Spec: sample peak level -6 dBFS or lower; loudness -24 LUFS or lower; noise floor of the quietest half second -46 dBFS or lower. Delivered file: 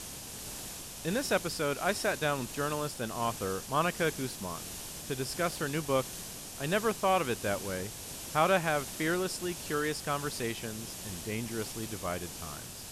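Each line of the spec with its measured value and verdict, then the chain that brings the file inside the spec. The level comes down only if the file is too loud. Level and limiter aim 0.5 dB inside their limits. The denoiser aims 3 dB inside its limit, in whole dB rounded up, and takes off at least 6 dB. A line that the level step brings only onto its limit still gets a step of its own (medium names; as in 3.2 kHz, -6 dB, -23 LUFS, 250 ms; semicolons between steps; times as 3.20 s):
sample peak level -13.5 dBFS: pass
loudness -33.0 LUFS: pass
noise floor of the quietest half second -43 dBFS: fail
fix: noise reduction 6 dB, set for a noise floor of -43 dBFS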